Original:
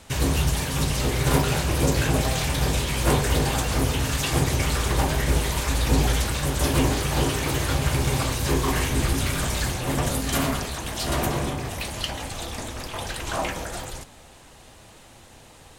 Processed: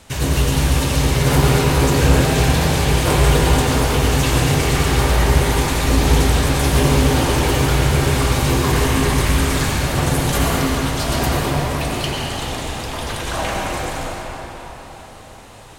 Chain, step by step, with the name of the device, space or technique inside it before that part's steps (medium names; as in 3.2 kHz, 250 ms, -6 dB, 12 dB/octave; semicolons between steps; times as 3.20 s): cathedral (reverberation RT60 4.6 s, pre-delay 80 ms, DRR -3.5 dB); trim +2 dB